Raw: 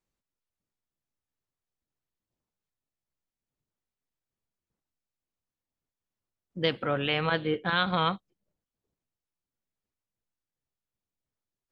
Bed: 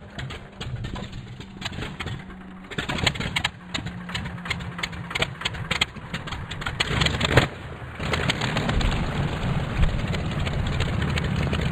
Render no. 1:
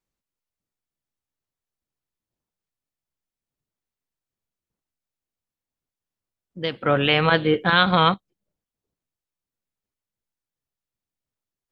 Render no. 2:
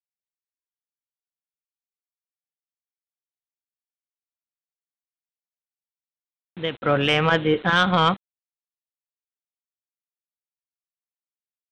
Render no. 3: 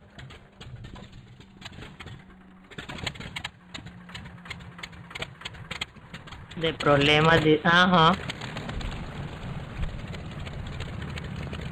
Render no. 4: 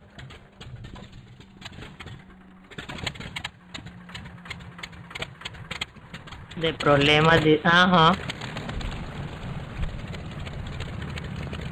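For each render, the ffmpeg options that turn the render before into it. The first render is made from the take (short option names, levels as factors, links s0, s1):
-filter_complex "[0:a]asplit=3[s0][s1][s2];[s0]atrim=end=6.862[s3];[s1]atrim=start=6.858:end=8.142,asetpts=PTS-STARTPTS,volume=2.82[s4];[s2]atrim=start=8.138[s5];[s3][s4]acrossfade=d=0.004:c1=hsin:c2=hsin[s6];[s6][s5]acrossfade=d=0.004:c1=hsin:c2=hsin"
-af "aresample=8000,acrusher=bits=6:mix=0:aa=0.000001,aresample=44100,asoftclip=type=tanh:threshold=0.501"
-filter_complex "[1:a]volume=0.299[s0];[0:a][s0]amix=inputs=2:normalize=0"
-af "volume=1.19"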